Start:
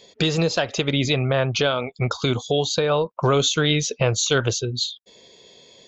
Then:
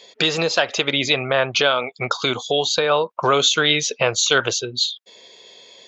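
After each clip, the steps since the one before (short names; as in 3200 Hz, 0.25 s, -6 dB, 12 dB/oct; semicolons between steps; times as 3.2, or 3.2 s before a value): HPF 1000 Hz 6 dB/oct; high shelf 5000 Hz -9 dB; gain +8.5 dB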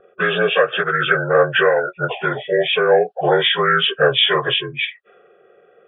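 inharmonic rescaling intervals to 79%; low-pass opened by the level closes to 620 Hz, open at -16 dBFS; fixed phaser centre 1400 Hz, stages 8; gain +8 dB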